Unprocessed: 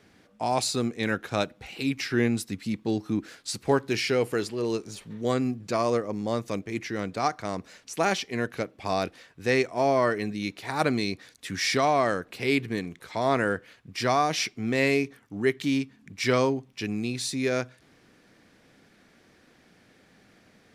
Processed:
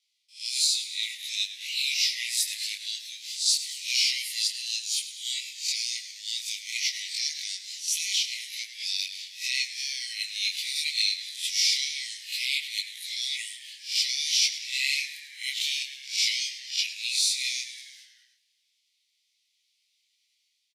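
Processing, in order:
peak hold with a rise ahead of every peak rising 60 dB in 0.34 s
noise gate with hold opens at −44 dBFS
high shelf with overshoot 2,400 Hz +13.5 dB, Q 1.5
automatic gain control gain up to 3 dB
brickwall limiter −9.5 dBFS, peak gain reduction 8 dB
linear-phase brick-wall high-pass 1,900 Hz
on a send: echo with shifted repeats 105 ms, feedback 63%, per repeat −68 Hz, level −13 dB
on the sum: micro pitch shift up and down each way 19 cents

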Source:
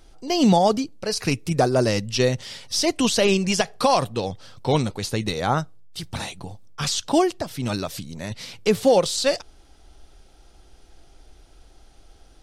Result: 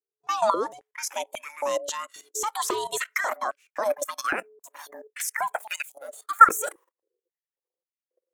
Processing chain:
gliding playback speed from 103% → 195%
noise reduction from a noise print of the clip's start 14 dB
noise gate −46 dBFS, range −34 dB
parametric band 4,800 Hz −14 dB 0.25 octaves
output level in coarse steps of 15 dB
ring modulation 430 Hz
high-pass on a step sequencer 3.7 Hz 320–2,500 Hz
level +3 dB

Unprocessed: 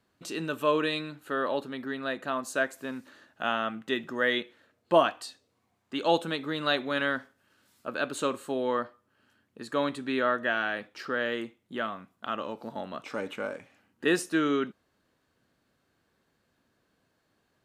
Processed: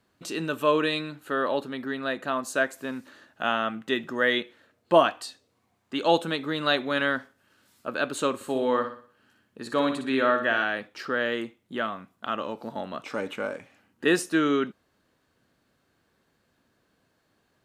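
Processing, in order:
0:08.35–0:10.64: flutter between parallel walls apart 10.3 metres, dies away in 0.46 s
level +3 dB

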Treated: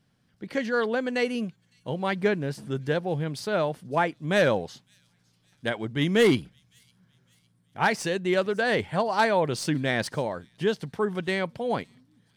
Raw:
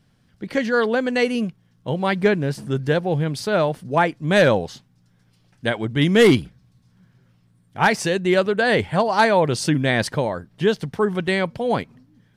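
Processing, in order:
stylus tracing distortion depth 0.022 ms
low-shelf EQ 63 Hz −11 dB
delay with a high-pass on its return 558 ms, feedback 48%, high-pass 5,500 Hz, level −20 dB
level −6 dB

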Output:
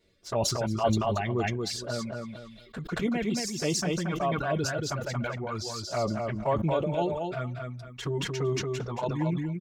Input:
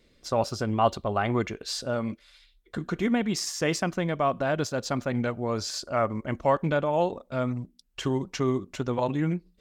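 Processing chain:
reverb reduction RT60 1.4 s
notch comb filter 260 Hz
flanger swept by the level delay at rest 11 ms, full sweep at −23.5 dBFS
repeating echo 229 ms, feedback 15%, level −4 dB
level that may fall only so fast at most 38 dB per second

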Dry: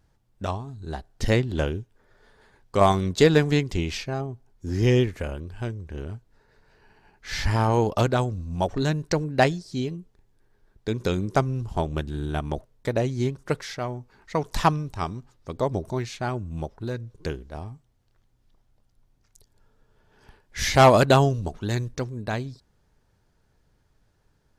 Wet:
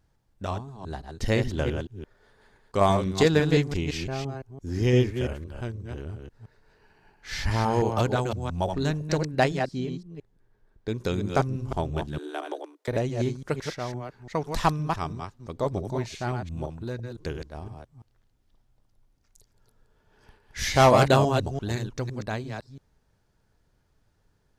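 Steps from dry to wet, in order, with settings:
delay that plays each chunk backwards 170 ms, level −5.5 dB
0:09.59–0:10.90: high-shelf EQ 3,800 Hz −8 dB
0:12.18–0:12.88: Butterworth high-pass 290 Hz 96 dB per octave
level −3 dB

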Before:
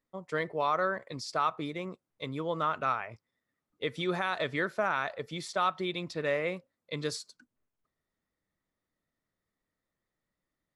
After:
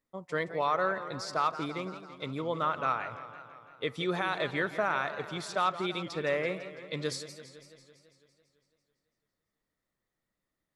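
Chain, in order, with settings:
feedback echo with a swinging delay time 167 ms, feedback 66%, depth 151 cents, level −13 dB

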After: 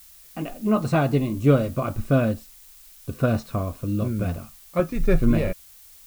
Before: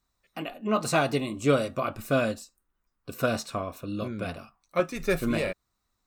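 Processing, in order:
RIAA equalisation playback
background noise blue −49 dBFS

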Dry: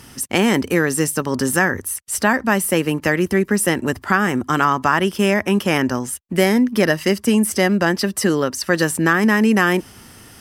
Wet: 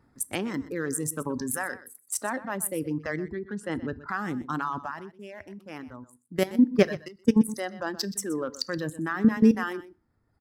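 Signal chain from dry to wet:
adaptive Wiener filter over 15 samples
dynamic equaliser 1,800 Hz, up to −3 dB, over −31 dBFS, Q 4.3
output level in coarse steps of 14 dB
0:03.31–0:04.05: low-pass filter 4,400 Hz 12 dB per octave
reverb reduction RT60 1.5 s
0:01.56–0:02.43: high-pass filter 320 Hz → 130 Hz 12 dB per octave
noise reduction from a noise print of the clip's start 7 dB
0:04.80–0:06.55: duck −10 dB, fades 0.18 s
single-tap delay 124 ms −16 dB
feedback delay network reverb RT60 0.38 s, low-frequency decay 1.3×, high-frequency decay 0.9×, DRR 17 dB
0:07.08–0:07.48: expander for the loud parts 1.5 to 1, over −34 dBFS

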